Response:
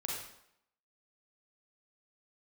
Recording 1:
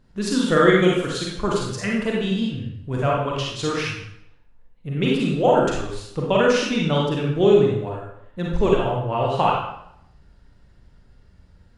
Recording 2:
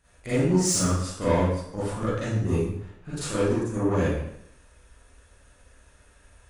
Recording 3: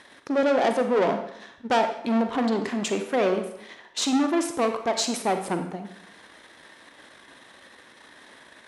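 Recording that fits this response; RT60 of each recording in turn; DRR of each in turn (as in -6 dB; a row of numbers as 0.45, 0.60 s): 1; 0.75, 0.75, 0.75 s; -3.5, -12.0, 6.5 dB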